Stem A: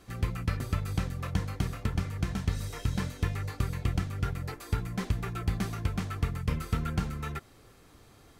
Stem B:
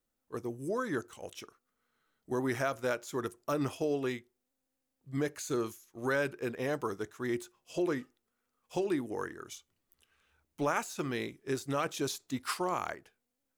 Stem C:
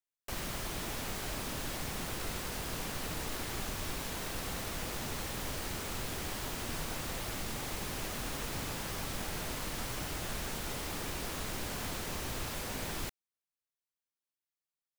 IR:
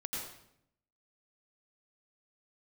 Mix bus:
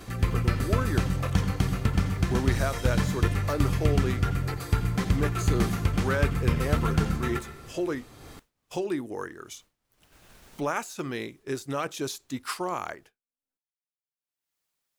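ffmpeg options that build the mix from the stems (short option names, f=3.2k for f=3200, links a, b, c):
-filter_complex "[0:a]volume=2.5dB,asplit=2[a][b];[b]volume=-5.5dB[c];[1:a]volume=2dB,asplit=2[d][e];[2:a]volume=-18.5dB[f];[e]apad=whole_len=661009[g];[f][g]sidechaincompress=threshold=-43dB:ratio=12:attack=16:release=1300[h];[3:a]atrim=start_sample=2205[i];[c][i]afir=irnorm=-1:irlink=0[j];[a][d][h][j]amix=inputs=4:normalize=0,agate=range=-33dB:threshold=-48dB:ratio=3:detection=peak,acompressor=mode=upward:threshold=-36dB:ratio=2.5"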